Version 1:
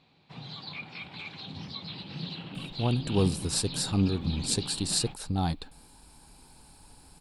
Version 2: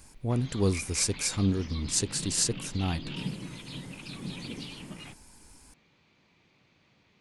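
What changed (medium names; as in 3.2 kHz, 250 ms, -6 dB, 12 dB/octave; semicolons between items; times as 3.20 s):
speech: entry -2.55 s; master: add graphic EQ with 31 bands 160 Hz -5 dB, 800 Hz -8 dB, 2 kHz +6 dB, 4 kHz -8 dB, 6.3 kHz +11 dB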